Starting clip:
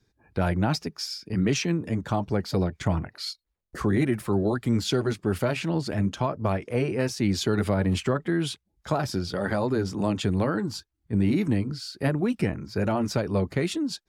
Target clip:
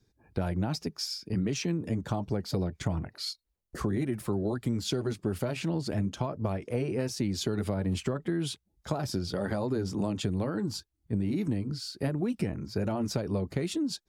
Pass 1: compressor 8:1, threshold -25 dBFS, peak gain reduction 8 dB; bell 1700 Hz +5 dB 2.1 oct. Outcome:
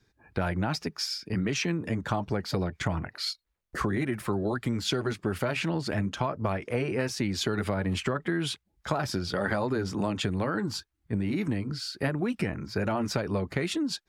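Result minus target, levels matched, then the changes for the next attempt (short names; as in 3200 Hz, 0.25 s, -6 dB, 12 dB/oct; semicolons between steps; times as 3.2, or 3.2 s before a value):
2000 Hz band +8.0 dB
change: bell 1700 Hz -5.5 dB 2.1 oct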